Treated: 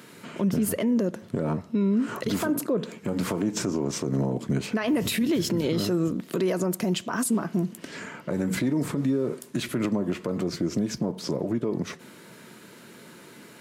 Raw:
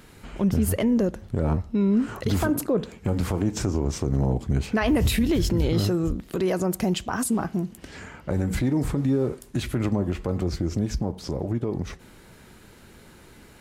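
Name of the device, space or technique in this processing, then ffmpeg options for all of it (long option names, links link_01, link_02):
PA system with an anti-feedback notch: -af "highpass=frequency=150:width=0.5412,highpass=frequency=150:width=1.3066,asuperstop=centerf=790:order=4:qfactor=7.5,alimiter=limit=-20.5dB:level=0:latency=1:release=138,volume=3.5dB"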